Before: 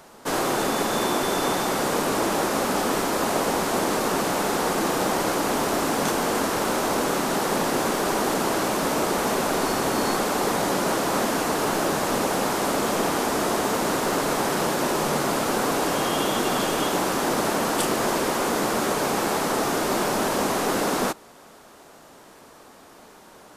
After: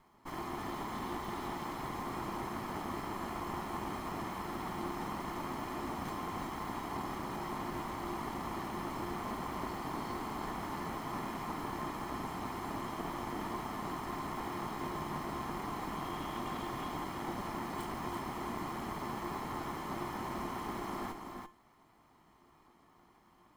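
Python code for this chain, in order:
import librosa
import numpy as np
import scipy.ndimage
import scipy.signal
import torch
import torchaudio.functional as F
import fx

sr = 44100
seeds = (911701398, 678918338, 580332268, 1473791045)

y = fx.lower_of_two(x, sr, delay_ms=0.95)
y = fx.peak_eq(y, sr, hz=8600.0, db=-13.0, octaves=2.7)
y = fx.comb_fb(y, sr, f0_hz=350.0, decay_s=0.34, harmonics='odd', damping=0.0, mix_pct=70)
y = y + 10.0 ** (-6.0 / 20.0) * np.pad(y, (int(337 * sr / 1000.0), 0))[:len(y)]
y = F.gain(torch.from_numpy(y), -3.5).numpy()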